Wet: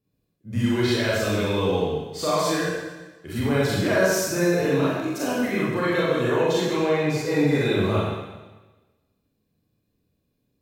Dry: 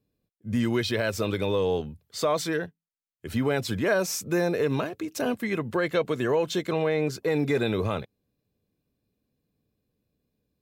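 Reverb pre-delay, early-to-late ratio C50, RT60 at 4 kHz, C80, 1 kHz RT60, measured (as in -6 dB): 29 ms, -2.5 dB, 1.2 s, 0.5 dB, 1.2 s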